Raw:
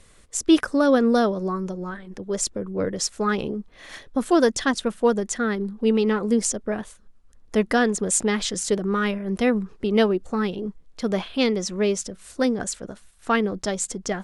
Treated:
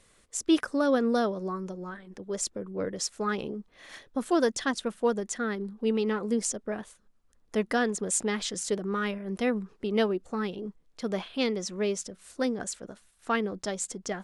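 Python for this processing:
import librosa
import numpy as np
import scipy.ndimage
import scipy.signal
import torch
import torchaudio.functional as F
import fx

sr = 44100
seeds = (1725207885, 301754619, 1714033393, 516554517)

y = fx.low_shelf(x, sr, hz=97.0, db=-9.0)
y = y * librosa.db_to_amplitude(-6.0)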